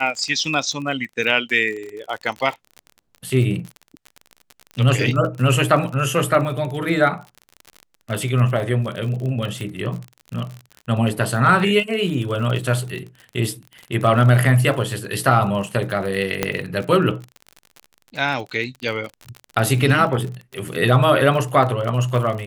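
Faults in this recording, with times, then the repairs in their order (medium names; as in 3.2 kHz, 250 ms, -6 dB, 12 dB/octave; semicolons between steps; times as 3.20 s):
crackle 40 per s -27 dBFS
9.61 s: pop -18 dBFS
16.43 s: pop -3 dBFS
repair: de-click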